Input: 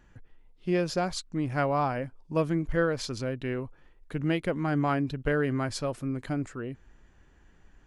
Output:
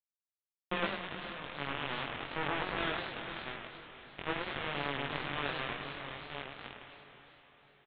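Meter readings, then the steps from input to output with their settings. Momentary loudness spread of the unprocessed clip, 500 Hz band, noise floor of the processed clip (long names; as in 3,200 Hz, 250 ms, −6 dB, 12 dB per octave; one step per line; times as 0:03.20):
10 LU, −11.5 dB, below −85 dBFS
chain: peak hold with a decay on every bin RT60 2.78 s
low-shelf EQ 160 Hz −9 dB
mains-hum notches 60/120/180/240/300 Hz
brickwall limiter −22 dBFS, peak gain reduction 10 dB
bit reduction 4 bits
high-frequency loss of the air 130 metres
double-tracking delay 21 ms −2.5 dB
feedback delay with all-pass diffusion 496 ms, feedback 44%, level −10.5 dB
downsampling to 8,000 Hz
feedback echo with a swinging delay time 104 ms, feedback 41%, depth 193 cents, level −6 dB
level −4 dB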